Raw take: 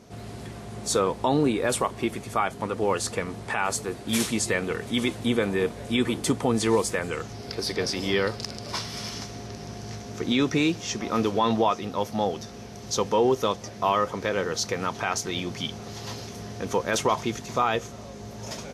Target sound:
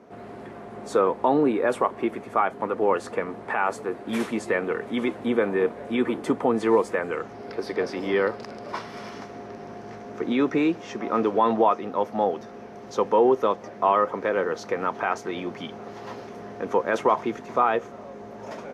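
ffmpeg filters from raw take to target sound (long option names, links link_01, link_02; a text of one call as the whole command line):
ffmpeg -i in.wav -filter_complex "[0:a]acrossover=split=220 2100:gain=0.126 1 0.1[link_01][link_02][link_03];[link_01][link_02][link_03]amix=inputs=3:normalize=0,volume=3.5dB" out.wav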